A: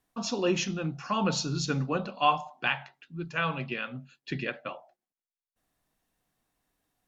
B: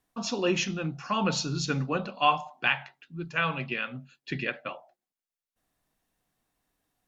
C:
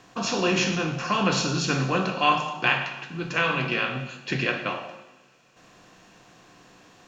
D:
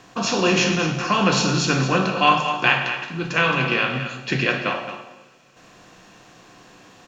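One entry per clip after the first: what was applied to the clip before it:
dynamic bell 2.2 kHz, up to +4 dB, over -43 dBFS, Q 1.2
spectral levelling over time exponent 0.6; two-slope reverb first 0.9 s, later 3.4 s, from -24 dB, DRR 3.5 dB
delay 220 ms -10.5 dB; trim +4.5 dB

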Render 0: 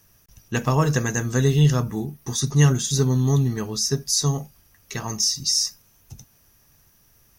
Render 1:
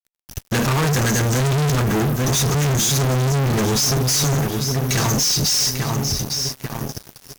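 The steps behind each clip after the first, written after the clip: saturation -18 dBFS, distortion -11 dB; filtered feedback delay 845 ms, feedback 50%, low-pass 3 kHz, level -12.5 dB; fuzz box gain 43 dB, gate -47 dBFS; trim -4 dB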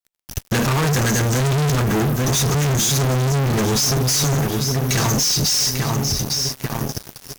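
compression, threshold -22 dBFS, peak gain reduction 5 dB; trim +4.5 dB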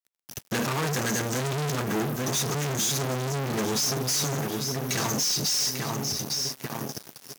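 high-pass 170 Hz 12 dB/octave; trim -7 dB

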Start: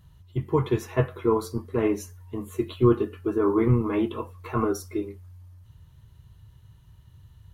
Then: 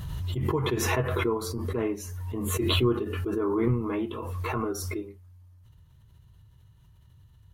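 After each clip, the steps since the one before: swell ahead of each attack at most 22 dB/s; trim -6 dB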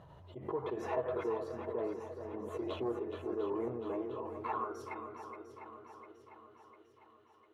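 saturation -19 dBFS, distortion -18 dB; band-pass sweep 630 Hz -> 2.2 kHz, 4.12–5.46 s; shuffle delay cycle 701 ms, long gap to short 1.5:1, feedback 50%, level -9 dB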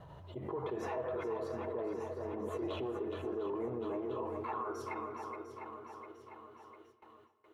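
peak limiter -34 dBFS, peak gain reduction 10.5 dB; gate with hold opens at -53 dBFS; on a send at -14.5 dB: reverberation RT60 1.3 s, pre-delay 50 ms; on the sum: trim +3.5 dB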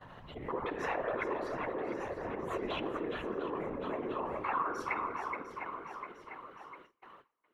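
peaking EQ 1.9 kHz +12.5 dB 1.9 oct; gate -54 dBFS, range -16 dB; whisper effect; trim -1 dB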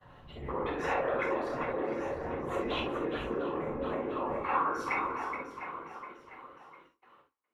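peaking EQ 60 Hz +3.5 dB 1.9 oct; gated-style reverb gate 90 ms flat, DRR 0 dB; three bands expanded up and down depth 40%

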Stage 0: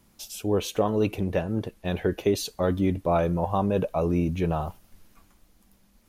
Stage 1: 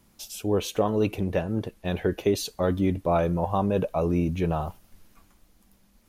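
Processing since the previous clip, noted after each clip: no audible change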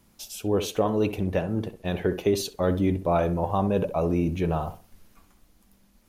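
tape echo 64 ms, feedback 32%, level -9 dB, low-pass 1.2 kHz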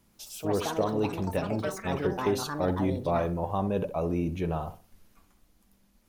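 ever faster or slower copies 132 ms, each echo +7 st, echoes 2, each echo -6 dB; trim -4.5 dB

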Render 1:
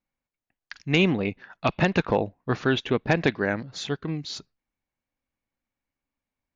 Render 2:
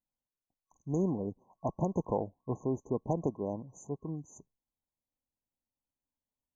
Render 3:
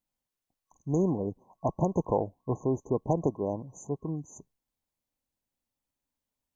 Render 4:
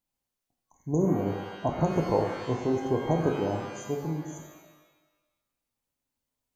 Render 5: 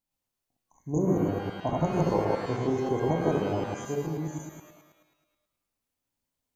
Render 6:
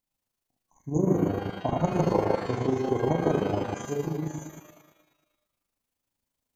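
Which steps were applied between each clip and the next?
FFT band-reject 1.1–6 kHz; trim -8.5 dB
dynamic bell 220 Hz, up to -4 dB, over -45 dBFS, Q 3.4; trim +5 dB
pitch-shifted reverb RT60 1.1 s, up +12 st, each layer -8 dB, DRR 2.5 dB
chunks repeated in reverse 107 ms, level 0 dB; trim -2.5 dB
AM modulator 26 Hz, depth 40%; trim +3.5 dB

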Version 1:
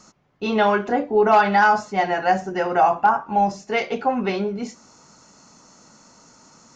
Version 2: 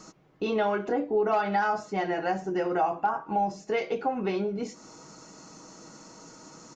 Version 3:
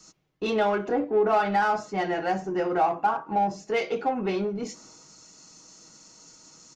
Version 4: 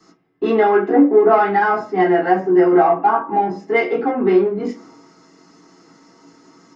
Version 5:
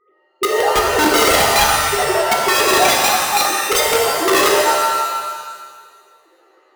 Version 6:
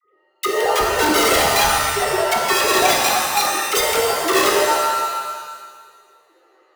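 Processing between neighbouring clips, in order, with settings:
peaking EQ 360 Hz +7.5 dB 1.1 oct; comb 6.3 ms, depth 38%; compression 2:1, threshold -33 dBFS, peak gain reduction 13.5 dB
in parallel at -4 dB: saturation -31.5 dBFS, distortion -7 dB; on the sum: three bands expanded up and down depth 70%
reverberation RT60 0.25 s, pre-delay 3 ms, DRR -4.5 dB; trim -7.5 dB
formants replaced by sine waves; integer overflow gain 11.5 dB; pitch-shifted reverb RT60 1.5 s, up +7 st, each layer -2 dB, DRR 0 dB; trim -1 dB
phase dispersion lows, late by 49 ms, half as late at 770 Hz; trim -2.5 dB

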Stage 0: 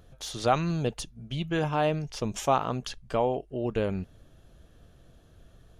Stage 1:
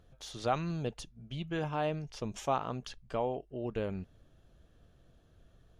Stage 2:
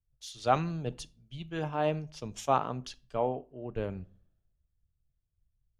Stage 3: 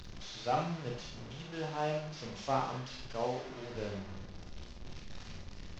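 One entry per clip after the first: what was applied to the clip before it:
treble shelf 9.9 kHz -9.5 dB; trim -7 dB
simulated room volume 940 m³, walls furnished, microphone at 0.37 m; three bands expanded up and down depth 100%
one-bit delta coder 32 kbps, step -35 dBFS; Schroeder reverb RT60 0.43 s, combs from 31 ms, DRR 0.5 dB; trim -7 dB

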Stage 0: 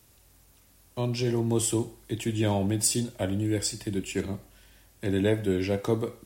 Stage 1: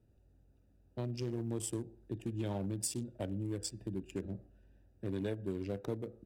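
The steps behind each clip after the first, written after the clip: local Wiener filter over 41 samples; compression 2.5:1, threshold -32 dBFS, peak gain reduction 9 dB; trim -4.5 dB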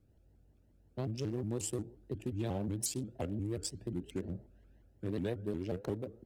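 vibrato with a chosen wave saw up 5.6 Hz, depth 250 cents; trim +1 dB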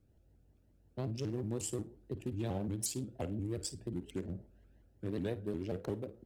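flutter echo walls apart 9.2 m, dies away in 0.21 s; trim -1 dB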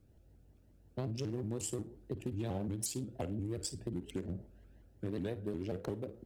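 compression 2.5:1, threshold -40 dBFS, peak gain reduction 6 dB; trim +4 dB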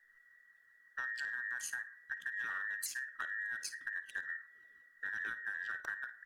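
every band turned upside down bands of 2 kHz; trim -2.5 dB

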